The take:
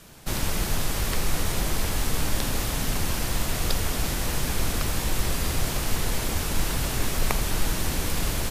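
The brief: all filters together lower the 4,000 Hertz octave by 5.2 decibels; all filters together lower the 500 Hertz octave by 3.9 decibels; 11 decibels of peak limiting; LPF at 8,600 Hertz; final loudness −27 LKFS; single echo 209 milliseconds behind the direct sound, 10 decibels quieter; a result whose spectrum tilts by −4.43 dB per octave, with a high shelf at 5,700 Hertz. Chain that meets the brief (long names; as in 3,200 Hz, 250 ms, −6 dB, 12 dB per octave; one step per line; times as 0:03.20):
low-pass filter 8,600 Hz
parametric band 500 Hz −5 dB
parametric band 4,000 Hz −3.5 dB
high-shelf EQ 5,700 Hz −7.5 dB
brickwall limiter −19 dBFS
single-tap delay 209 ms −10 dB
level +5 dB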